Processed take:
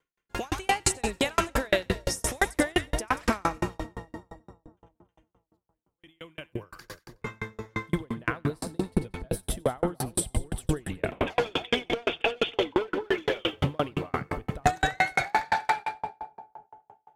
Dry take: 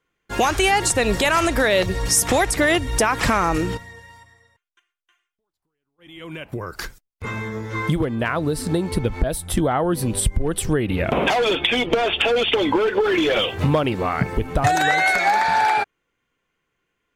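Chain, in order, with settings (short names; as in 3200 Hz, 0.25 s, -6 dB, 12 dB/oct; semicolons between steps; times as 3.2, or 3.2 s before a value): split-band echo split 920 Hz, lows 0.277 s, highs 92 ms, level -8 dB; dB-ramp tremolo decaying 5.8 Hz, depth 40 dB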